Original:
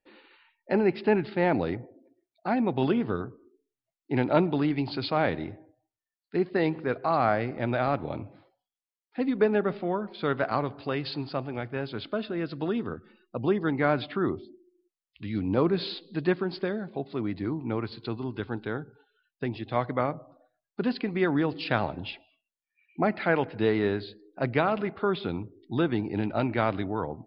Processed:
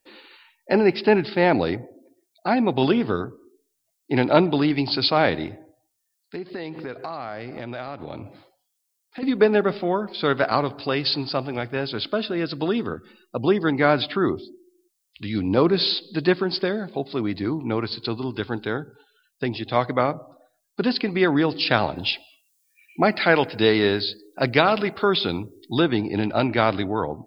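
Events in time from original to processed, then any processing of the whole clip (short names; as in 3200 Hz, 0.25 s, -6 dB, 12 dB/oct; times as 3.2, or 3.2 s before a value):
5.47–9.23 compressor, threshold -35 dBFS
21.96–25.8 high shelf 3500 Hz +8.5 dB
whole clip: tone controls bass -3 dB, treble +14 dB; gain +6.5 dB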